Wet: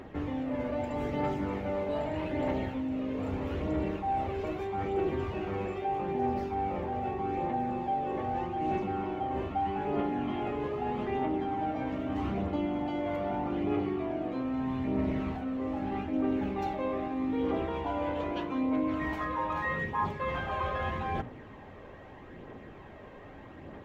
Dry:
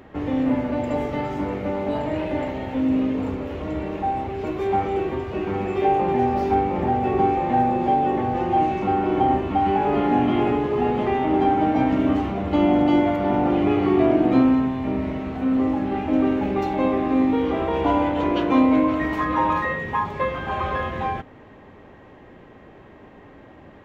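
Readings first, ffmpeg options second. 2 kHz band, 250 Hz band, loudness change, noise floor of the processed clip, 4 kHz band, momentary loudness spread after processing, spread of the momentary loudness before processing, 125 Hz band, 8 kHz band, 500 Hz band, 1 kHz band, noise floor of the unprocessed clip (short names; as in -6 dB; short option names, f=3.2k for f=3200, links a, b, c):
-8.5 dB, -11.5 dB, -11.0 dB, -48 dBFS, -9.5 dB, 6 LU, 8 LU, -8.0 dB, n/a, -10.0 dB, -10.5 dB, -46 dBFS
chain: -af "bandreject=f=60:t=h:w=6,bandreject=f=120:t=h:w=6,bandreject=f=180:t=h:w=6,bandreject=f=240:t=h:w=6,bandreject=f=300:t=h:w=6,areverse,acompressor=threshold=-27dB:ratio=10,areverse,aphaser=in_gain=1:out_gain=1:delay=2:decay=0.33:speed=0.8:type=triangular,volume=-2dB"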